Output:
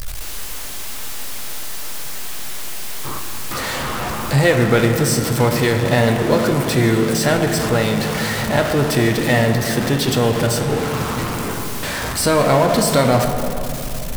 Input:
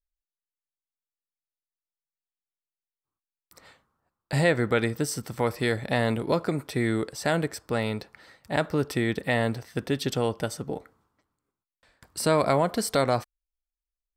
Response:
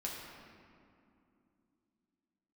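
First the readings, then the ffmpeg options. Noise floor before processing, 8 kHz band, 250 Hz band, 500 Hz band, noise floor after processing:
under -85 dBFS, +14.5 dB, +10.5 dB, +9.5 dB, -25 dBFS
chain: -filter_complex "[0:a]aeval=exprs='val(0)+0.5*0.0668*sgn(val(0))':c=same,asplit=2[s0][s1];[1:a]atrim=start_sample=2205,asetrate=30870,aresample=44100[s2];[s1][s2]afir=irnorm=-1:irlink=0,volume=0.891[s3];[s0][s3]amix=inputs=2:normalize=0"

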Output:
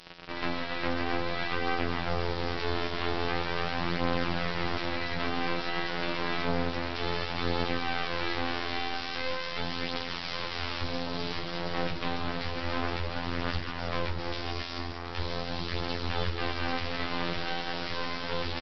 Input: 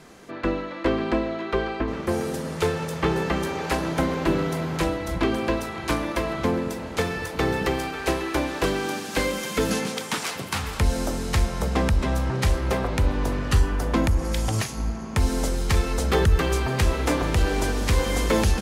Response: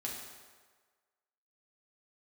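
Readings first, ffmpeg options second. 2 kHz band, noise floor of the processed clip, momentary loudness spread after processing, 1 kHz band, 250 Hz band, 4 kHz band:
-3.0 dB, -36 dBFS, 4 LU, -4.0 dB, -9.5 dB, -1.0 dB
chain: -filter_complex "[0:a]acompressor=threshold=0.0631:ratio=6,tiltshelf=f=650:g=-6,afftfilt=real='hypot(re,im)*cos(PI*b)':imag='0':win_size=2048:overlap=0.75,highpass=61,asplit=5[s0][s1][s2][s3][s4];[s1]adelay=147,afreqshift=-96,volume=0.2[s5];[s2]adelay=294,afreqshift=-192,volume=0.0841[s6];[s3]adelay=441,afreqshift=-288,volume=0.0351[s7];[s4]adelay=588,afreqshift=-384,volume=0.0148[s8];[s0][s5][s6][s7][s8]amix=inputs=5:normalize=0,alimiter=limit=0.168:level=0:latency=1:release=24,aresample=11025,acrusher=bits=4:dc=4:mix=0:aa=0.000001,aresample=44100,lowshelf=f=190:g=5.5,flanger=delay=6.2:depth=8.3:regen=-29:speed=0.17:shape=sinusoidal,volume=2.37" -ar 44100 -c:a libvorbis -b:a 48k

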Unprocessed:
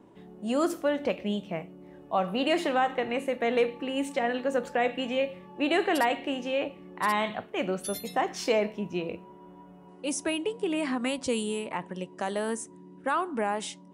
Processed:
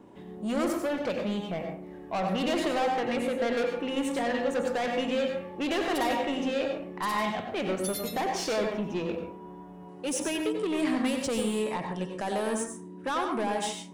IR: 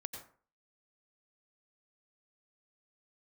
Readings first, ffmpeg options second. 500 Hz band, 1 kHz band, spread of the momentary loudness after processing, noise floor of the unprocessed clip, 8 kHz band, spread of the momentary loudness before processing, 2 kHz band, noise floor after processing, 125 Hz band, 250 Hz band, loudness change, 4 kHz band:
-0.5 dB, -1.0 dB, 8 LU, -51 dBFS, +1.5 dB, 9 LU, -2.0 dB, -45 dBFS, +2.5 dB, +1.0 dB, -0.5 dB, 0.0 dB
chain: -filter_complex "[0:a]asoftclip=type=tanh:threshold=0.0355[s0];[1:a]atrim=start_sample=2205[s1];[s0][s1]afir=irnorm=-1:irlink=0,volume=2.11"

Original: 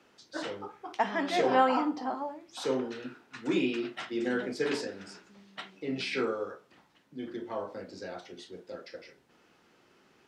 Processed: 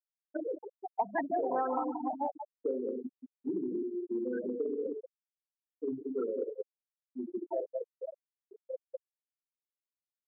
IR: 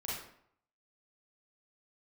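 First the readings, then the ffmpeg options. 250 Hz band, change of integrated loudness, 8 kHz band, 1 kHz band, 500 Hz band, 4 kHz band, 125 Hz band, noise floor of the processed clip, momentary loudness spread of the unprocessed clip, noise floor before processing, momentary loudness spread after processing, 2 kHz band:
-3.5 dB, -4.5 dB, under -30 dB, -4.5 dB, -2.0 dB, under -40 dB, under -10 dB, under -85 dBFS, 19 LU, -65 dBFS, 13 LU, -13.0 dB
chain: -filter_complex "[0:a]aresample=8000,acrusher=bits=4:mode=log:mix=0:aa=0.000001,aresample=44100,aeval=exprs='val(0)+0.00158*(sin(2*PI*60*n/s)+sin(2*PI*2*60*n/s)/2+sin(2*PI*3*60*n/s)/3+sin(2*PI*4*60*n/s)/4+sin(2*PI*5*60*n/s)/5)':c=same,asplit=2[s0][s1];[s1]asoftclip=type=hard:threshold=0.0596,volume=0.376[s2];[s0][s2]amix=inputs=2:normalize=0,lowpass=f=1100:p=1,agate=range=0.0224:threshold=0.00631:ratio=3:detection=peak,aecho=1:1:181|362|543:0.501|0.0852|0.0145,acontrast=70,afftfilt=real='re*gte(hypot(re,im),0.224)':imag='im*gte(hypot(re,im),0.224)':win_size=1024:overlap=0.75,acompressor=threshold=0.0447:ratio=6,aemphasis=mode=production:type=riaa"

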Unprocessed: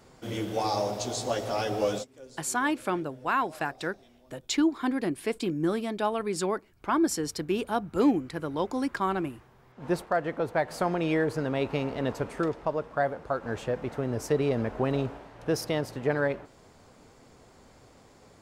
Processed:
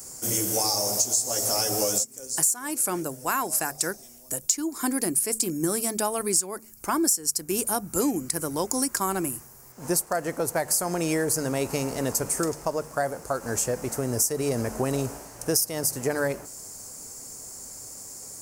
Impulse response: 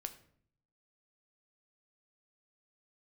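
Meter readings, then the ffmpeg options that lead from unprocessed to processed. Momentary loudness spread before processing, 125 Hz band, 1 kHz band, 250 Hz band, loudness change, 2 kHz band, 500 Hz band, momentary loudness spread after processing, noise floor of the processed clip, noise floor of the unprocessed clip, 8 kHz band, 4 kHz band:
8 LU, +0.5 dB, -0.5 dB, -0.5 dB, +4.0 dB, -0.5 dB, 0.0 dB, 15 LU, -49 dBFS, -58 dBFS, +17.0 dB, +7.0 dB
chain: -af "aexciter=amount=9.4:drive=9.7:freq=5500,bandreject=f=73.74:t=h:w=4,bandreject=f=147.48:t=h:w=4,bandreject=f=221.22:t=h:w=4,acompressor=threshold=0.0708:ratio=12,volume=1.33"

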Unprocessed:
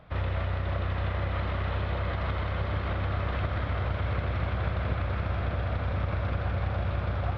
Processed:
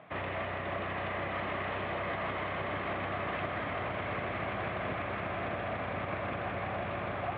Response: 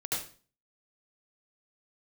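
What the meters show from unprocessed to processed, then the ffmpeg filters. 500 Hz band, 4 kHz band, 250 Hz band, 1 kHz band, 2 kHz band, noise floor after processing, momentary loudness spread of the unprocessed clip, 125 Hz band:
+0.5 dB, -2.0 dB, -2.5 dB, +1.0 dB, +1.5 dB, -37 dBFS, 1 LU, -13.5 dB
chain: -filter_complex "[0:a]asplit=2[s0][s1];[s1]highpass=f=720:p=1,volume=7.94,asoftclip=type=tanh:threshold=0.15[s2];[s0][s2]amix=inputs=2:normalize=0,lowpass=f=1700:p=1,volume=0.501,highpass=150,equalizer=f=510:t=q:w=4:g=-7,equalizer=f=910:t=q:w=4:g=-5,equalizer=f=1400:t=q:w=4:g=-9,lowpass=f=3100:w=0.5412,lowpass=f=3100:w=1.3066,volume=0.75"

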